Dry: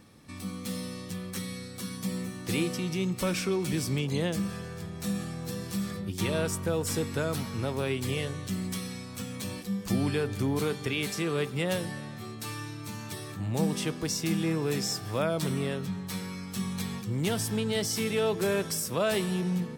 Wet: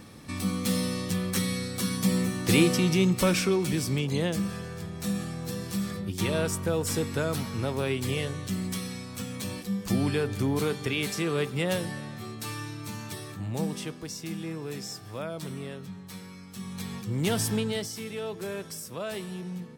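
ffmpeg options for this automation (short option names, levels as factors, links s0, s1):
-af "volume=8.41,afade=t=out:st=2.83:d=0.94:silence=0.473151,afade=t=out:st=12.94:d=1.12:silence=0.375837,afade=t=in:st=16.58:d=0.89:silence=0.298538,afade=t=out:st=17.47:d=0.45:silence=0.281838"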